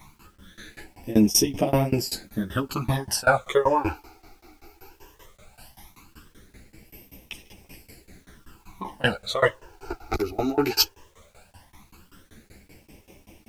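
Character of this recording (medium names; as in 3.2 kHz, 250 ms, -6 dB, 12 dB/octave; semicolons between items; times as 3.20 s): tremolo saw down 5.2 Hz, depth 100%; phasing stages 12, 0.17 Hz, lowest notch 170–1400 Hz; a quantiser's noise floor 12-bit, dither none; a shimmering, thickened sound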